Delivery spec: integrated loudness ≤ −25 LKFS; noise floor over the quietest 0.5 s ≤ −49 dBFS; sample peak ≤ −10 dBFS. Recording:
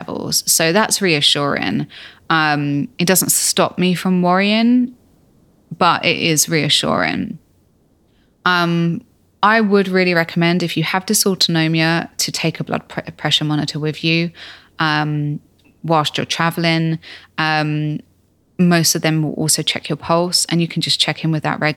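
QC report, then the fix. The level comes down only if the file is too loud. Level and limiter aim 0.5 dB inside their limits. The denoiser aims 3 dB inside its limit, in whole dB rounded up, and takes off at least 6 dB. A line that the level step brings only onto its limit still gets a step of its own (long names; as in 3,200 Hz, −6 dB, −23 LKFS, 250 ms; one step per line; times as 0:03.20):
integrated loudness −16.0 LKFS: out of spec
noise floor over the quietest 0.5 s −57 dBFS: in spec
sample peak −1.5 dBFS: out of spec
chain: level −9.5 dB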